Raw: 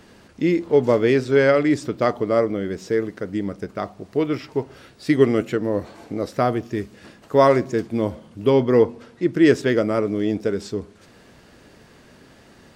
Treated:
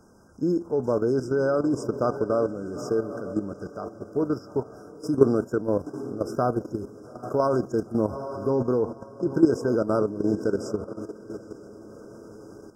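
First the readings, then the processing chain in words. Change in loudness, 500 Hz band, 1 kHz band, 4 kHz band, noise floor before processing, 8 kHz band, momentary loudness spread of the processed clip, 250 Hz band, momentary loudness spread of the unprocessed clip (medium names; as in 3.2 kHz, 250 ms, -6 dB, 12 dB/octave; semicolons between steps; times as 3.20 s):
-5.5 dB, -5.5 dB, -6.0 dB, under -10 dB, -50 dBFS, no reading, 18 LU, -4.5 dB, 13 LU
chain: echo that smears into a reverb 879 ms, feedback 45%, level -13 dB; level held to a coarse grid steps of 11 dB; FFT band-reject 1.6–4.9 kHz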